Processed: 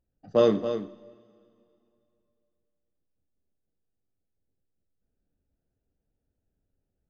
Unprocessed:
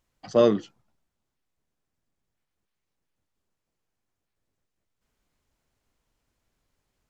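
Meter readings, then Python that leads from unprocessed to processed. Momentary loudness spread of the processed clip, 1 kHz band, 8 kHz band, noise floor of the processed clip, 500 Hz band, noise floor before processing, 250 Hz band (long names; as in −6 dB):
14 LU, −1.5 dB, can't be measured, −82 dBFS, −0.5 dB, −82 dBFS, −2.0 dB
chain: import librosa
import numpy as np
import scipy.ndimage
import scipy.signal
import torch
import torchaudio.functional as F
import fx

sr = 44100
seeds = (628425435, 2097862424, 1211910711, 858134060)

p1 = fx.wiener(x, sr, points=41)
p2 = p1 + fx.echo_single(p1, sr, ms=275, db=-9.5, dry=0)
p3 = fx.rev_double_slope(p2, sr, seeds[0], early_s=0.54, late_s=2.7, knee_db=-18, drr_db=10.0)
y = F.gain(torch.from_numpy(p3), -1.5).numpy()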